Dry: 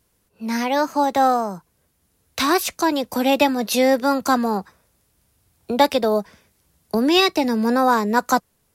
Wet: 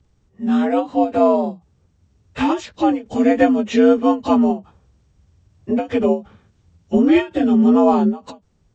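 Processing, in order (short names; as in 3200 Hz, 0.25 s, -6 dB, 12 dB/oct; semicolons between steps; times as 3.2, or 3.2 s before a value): inharmonic rescaling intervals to 85%; RIAA curve playback; ending taper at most 230 dB/s; gain +1 dB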